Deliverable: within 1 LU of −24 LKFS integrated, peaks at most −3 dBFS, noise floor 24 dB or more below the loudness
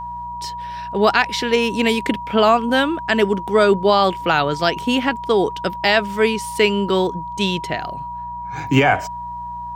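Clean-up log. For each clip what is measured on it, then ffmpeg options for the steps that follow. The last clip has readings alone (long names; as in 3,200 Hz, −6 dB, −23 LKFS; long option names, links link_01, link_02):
mains hum 60 Hz; hum harmonics up to 180 Hz; level of the hum −39 dBFS; interfering tone 960 Hz; level of the tone −27 dBFS; integrated loudness −18.0 LKFS; sample peak −1.0 dBFS; target loudness −24.0 LKFS
→ -af "bandreject=frequency=60:width_type=h:width=4,bandreject=frequency=120:width_type=h:width=4,bandreject=frequency=180:width_type=h:width=4"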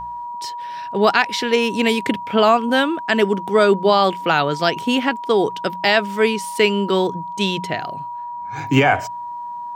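mains hum none found; interfering tone 960 Hz; level of the tone −27 dBFS
→ -af "bandreject=frequency=960:width=30"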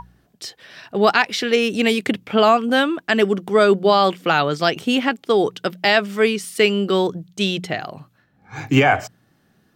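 interfering tone none found; integrated loudness −18.5 LKFS; sample peak −1.5 dBFS; target loudness −24.0 LKFS
→ -af "volume=-5.5dB"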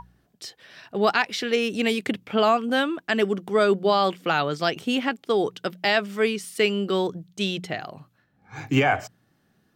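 integrated loudness −24.0 LKFS; sample peak −7.0 dBFS; background noise floor −67 dBFS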